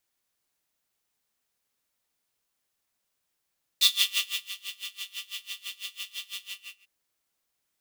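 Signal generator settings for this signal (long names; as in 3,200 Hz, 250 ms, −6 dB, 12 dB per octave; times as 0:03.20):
subtractive patch with tremolo G4, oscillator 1 square, interval +19 semitones, detune 15 cents, oscillator 2 level −7.5 dB, sub −2 dB, noise −2.5 dB, filter highpass, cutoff 2,700 Hz, Q 7.7, filter envelope 0.5 octaves, attack 2.1 ms, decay 0.67 s, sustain −16.5 dB, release 0.42 s, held 2.63 s, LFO 6 Hz, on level 24 dB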